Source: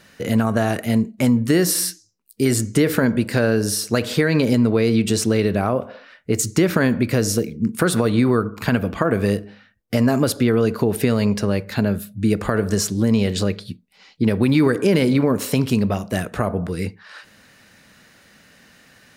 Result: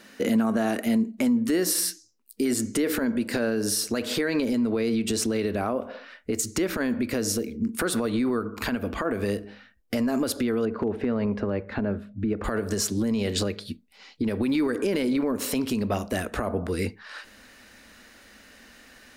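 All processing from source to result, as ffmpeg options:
-filter_complex "[0:a]asettb=1/sr,asplit=3[a][b][c];[a]atrim=end=10.654[d];[b]atrim=start=10.65:end=12.44,asetpts=PTS-STARTPTS,afade=t=in:d=0.004:c=qsin,afade=t=out:st=1.786:d=0.004:c=qsin,lowpass=1.7k,asoftclip=type=hard:threshold=-8dB[e];[c]atrim=start=12.436[f];[d][e]acrossfade=d=0.004:c1=hsin:c2=qsin[g];[g][f]acrossfade=d=0.004:c1=qsin:c2=hsin,lowshelf=f=180:t=q:w=3:g=-8.5,alimiter=limit=-14.5dB:level=0:latency=1:release=186,asubboost=boost=9.5:cutoff=63"

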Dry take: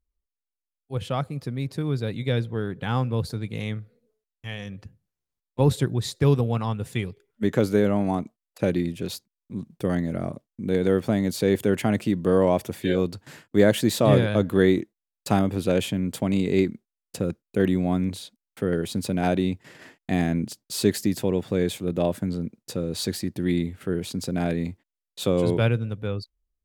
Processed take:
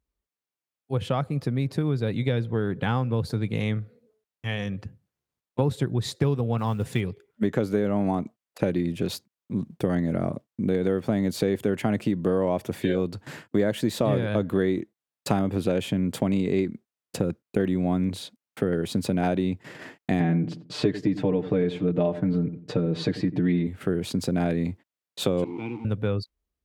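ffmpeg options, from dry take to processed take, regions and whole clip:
-filter_complex "[0:a]asettb=1/sr,asplit=3[a][b][c];[a]atrim=end=6.584[d];[b]atrim=start=6.58:end=7.01,asetpts=PTS-STARTPTS,afade=t=in:d=0.004:c=qsin,afade=t=out:st=0.426:d=0.004:c=qsin,acompressor=mode=upward:threshold=-36dB:ratio=2.5:attack=3.2:release=140:knee=2.83:detection=peak,acrusher=bits=7:mode=log:mix=0:aa=0.000001[e];[c]atrim=start=7.006[f];[d][e]acrossfade=d=0.004:c1=hsin:c2=qsin[g];[g][f]acrossfade=d=0.004:c1=qsin:c2=hsin,asettb=1/sr,asplit=3[h][i][j];[h]atrim=end=20.204[k];[i]atrim=start=20.2:end=23.67,asetpts=PTS-STARTPTS,afade=t=in:d=0.004:c=qsin,afade=t=out:st=3.466:d=0.004:c=qsin,lowpass=3.1k,aecho=1:1:6.7:0.96,atrim=end_sample=153027,asplit=2[l][m];[m]adelay=90,lowpass=f=910:p=1,volume=-14dB,asplit=2[n][o];[o]adelay=90,lowpass=f=910:p=1,volume=0.26,asplit=2[p][q];[q]adelay=90,lowpass=f=910:p=1,volume=0.26[r];[l][n][p][r]amix=inputs=4:normalize=0,atrim=end_sample=153027[s];[j]atrim=start=23.666[t];[k][s]acrossfade=d=0.004:c1=hsin:c2=qsin[u];[u][t]acrossfade=d=0.004:c1=qsin:c2=hsin,asettb=1/sr,asplit=3[v][w][x];[v]atrim=end=25.444[y];[w]atrim=start=25.44:end=25.85,asetpts=PTS-STARTPTS,afade=t=in:d=0.004:c=qsin,afade=t=out:st=0.406:d=0.004:c=qsin,aeval=exprs='val(0)*gte(abs(val(0)),0.0398)':c=same,asplit=3[z][aa][ab];[z]bandpass=f=300:t=q:w=8,volume=0dB[ac];[aa]bandpass=f=870:t=q:w=8,volume=-6dB[ad];[ab]bandpass=f=2.24k:t=q:w=8,volume=-9dB[ae];[ac][ad][ae]amix=inputs=3:normalize=0[af];[x]atrim=start=25.846[ag];[y][af]acrossfade=d=0.004:c1=hsin:c2=qsin[ah];[ah][ag]acrossfade=d=0.004:c1=qsin:c2=hsin,highpass=76,highshelf=f=3.5k:g=-7.5,acompressor=threshold=-28dB:ratio=4,volume=6.5dB"

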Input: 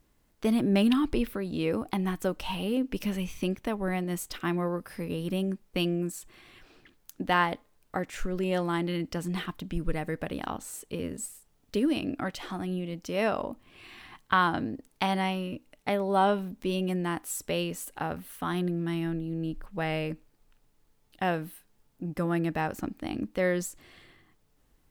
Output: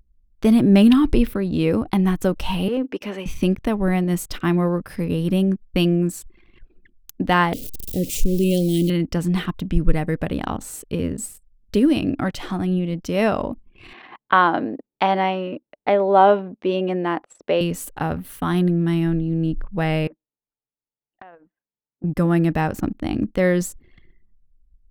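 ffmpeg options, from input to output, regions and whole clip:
-filter_complex "[0:a]asettb=1/sr,asplit=3[a][b][c];[a]atrim=end=2.684[d];[b]atrim=start=2.68:end=3.26,asetpts=PTS-STARTPTS,afade=t=in:d=0.004:c=qsin,afade=t=out:st=0.576:d=0.004:c=qsin,highpass=f=270:w=0.5412,highpass=f=270:w=1.3066,asplit=2[e][f];[f]highpass=f=720:p=1,volume=10dB,asoftclip=type=tanh:threshold=-21.5dB[g];[e][g]amix=inputs=2:normalize=0,lowpass=f=1.3k:p=1,volume=-6dB[h];[c]atrim=start=3.256[i];[d][h]acrossfade=d=0.004:c1=hsin:c2=qsin[j];[j][i]acrossfade=d=0.004:c1=qsin:c2=hsin,asettb=1/sr,asplit=3[k][l][m];[k]atrim=end=7.534[n];[l]atrim=start=7.53:end=8.9,asetpts=PTS-STARTPTS,afade=t=in:d=0.004:c=qsin,afade=t=out:st=1.366:d=0.004:c=qsin,aeval=exprs='val(0)+0.5*0.01*sgn(val(0))':c=same,asuperstop=centerf=1200:order=8:qfactor=0.55,aemphasis=mode=production:type=50kf[o];[m]atrim=start=8.896[p];[n][o]acrossfade=d=0.004:c1=hsin:c2=qsin[q];[q][p]acrossfade=d=0.004:c1=qsin:c2=hsin,asettb=1/sr,asplit=3[r][s][t];[r]atrim=end=13.934[u];[s]atrim=start=13.93:end=17.61,asetpts=PTS-STARTPTS,afade=t=in:d=0.004:c=qsin,afade=t=out:st=3.676:d=0.004:c=qsin,highpass=320,lowpass=3.3k,equalizer=f=590:w=0.95:g=5.5[v];[t]atrim=start=17.606[w];[u][v]acrossfade=d=0.004:c1=hsin:c2=qsin[x];[x][w]acrossfade=d=0.004:c1=qsin:c2=hsin,asettb=1/sr,asplit=3[y][z][aa];[y]atrim=end=20.074[ab];[z]atrim=start=20.07:end=22.04,asetpts=PTS-STARTPTS,afade=t=in:d=0.004:c=qsin,afade=t=out:st=1.966:d=0.004:c=qsin,highpass=600,lowpass=2.1k,acompressor=threshold=-46dB:ratio=8:attack=3.2:release=140:knee=1:detection=peak[ac];[aa]atrim=start=22.036[ad];[ab][ac]acrossfade=d=0.004:c1=hsin:c2=qsin[ae];[ae][ad]acrossfade=d=0.004:c1=qsin:c2=hsin,anlmdn=0.00631,lowshelf=f=250:g=9,volume=6dB"

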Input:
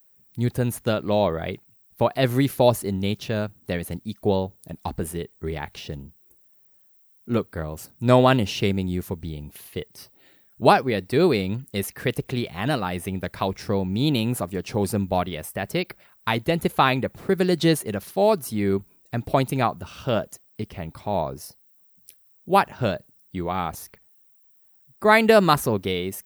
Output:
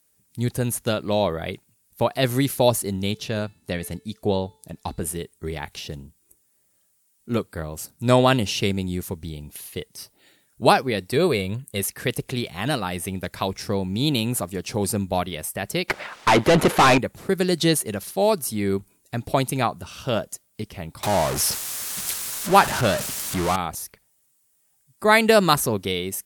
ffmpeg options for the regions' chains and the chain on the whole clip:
-filter_complex "[0:a]asettb=1/sr,asplit=3[a][b][c];[a]atrim=end=3.114[d];[b]atrim=start=3.11:end=5.06,asetpts=PTS-STARTPTS,afade=t=in:d=0.004:c=qsin,afade=t=out:st=1.946:d=0.004:c=qsin,highshelf=f=11k:g=-8.5,bandreject=f=437.9:t=h:w=4,bandreject=f=875.8:t=h:w=4,bandreject=f=1.3137k:t=h:w=4,bandreject=f=1.7516k:t=h:w=4,bandreject=f=2.1895k:t=h:w=4,bandreject=f=2.6274k:t=h:w=4,bandreject=f=3.0653k:t=h:w=4,bandreject=f=3.5032k:t=h:w=4,bandreject=f=3.9411k:t=h:w=4,bandreject=f=4.379k:t=h:w=4,bandreject=f=4.8169k:t=h:w=4,bandreject=f=5.2548k:t=h:w=4[e];[c]atrim=start=5.056[f];[d][e]acrossfade=d=0.004:c1=hsin:c2=qsin[g];[g][f]acrossfade=d=0.004:c1=qsin:c2=hsin,asettb=1/sr,asplit=3[h][i][j];[h]atrim=end=11.164[k];[i]atrim=start=11.16:end=11.8,asetpts=PTS-STARTPTS,afade=t=in:d=0.004:c=qsin,afade=t=out:st=0.636:d=0.004:c=qsin,equalizer=f=5.3k:w=3.1:g=-12,aecho=1:1:1.8:0.4,atrim=end_sample=28224[l];[j]atrim=start=11.796[m];[k][l]acrossfade=d=0.004:c1=hsin:c2=qsin[n];[n][m]acrossfade=d=0.004:c1=qsin:c2=hsin,asettb=1/sr,asplit=3[o][p][q];[o]atrim=end=15.884[r];[p]atrim=start=15.88:end=16.98,asetpts=PTS-STARTPTS,afade=t=in:d=0.004:c=qsin,afade=t=out:st=1.096:d=0.004:c=qsin,aeval=exprs='if(lt(val(0),0),0.251*val(0),val(0))':c=same,highshelf=f=4.2k:g=-10,asplit=2[s][t];[t]highpass=f=720:p=1,volume=37dB,asoftclip=type=tanh:threshold=-5.5dB[u];[s][u]amix=inputs=2:normalize=0,lowpass=f=1.6k:p=1,volume=-6dB[v];[q]atrim=start=16.976[w];[r][v]acrossfade=d=0.004:c1=hsin:c2=qsin[x];[x][w]acrossfade=d=0.004:c1=qsin:c2=hsin,asettb=1/sr,asplit=3[y][z][aa];[y]atrim=end=21.034[ab];[z]atrim=start=21.03:end=23.56,asetpts=PTS-STARTPTS,afade=t=in:d=0.004:c=qsin,afade=t=out:st=2.526:d=0.004:c=qsin,aeval=exprs='val(0)+0.5*0.0708*sgn(val(0))':c=same,equalizer=f=1.3k:t=o:w=1.5:g=4[ac];[aa]atrim=start=23.556[ad];[ab][ac]acrossfade=d=0.004:c1=hsin:c2=qsin[ae];[ae][ad]acrossfade=d=0.004:c1=qsin:c2=hsin,lowpass=11k,highshelf=f=4.7k:g=12,volume=-1dB"

